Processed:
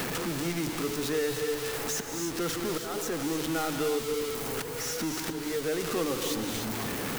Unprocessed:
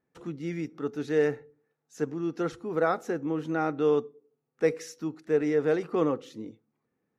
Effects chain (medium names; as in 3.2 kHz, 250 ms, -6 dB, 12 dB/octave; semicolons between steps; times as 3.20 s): jump at every zero crossing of -28 dBFS; bass shelf 62 Hz +9.5 dB; hum notches 50/100/150 Hz; slow attack 495 ms; treble shelf 2.7 kHz +11.5 dB; gated-style reverb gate 330 ms rising, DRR 5.5 dB; three bands compressed up and down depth 70%; trim -6 dB